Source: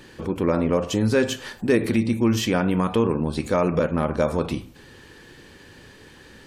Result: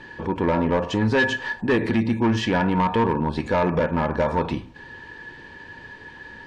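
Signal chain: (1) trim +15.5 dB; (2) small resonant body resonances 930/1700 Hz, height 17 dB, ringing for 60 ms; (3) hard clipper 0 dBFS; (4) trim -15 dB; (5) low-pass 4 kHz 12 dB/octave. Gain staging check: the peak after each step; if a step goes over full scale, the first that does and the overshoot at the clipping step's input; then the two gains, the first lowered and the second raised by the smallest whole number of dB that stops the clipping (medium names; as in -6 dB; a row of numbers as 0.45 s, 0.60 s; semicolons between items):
+8.0 dBFS, +10.0 dBFS, 0.0 dBFS, -15.0 dBFS, -14.5 dBFS; step 1, 10.0 dB; step 1 +5.5 dB, step 4 -5 dB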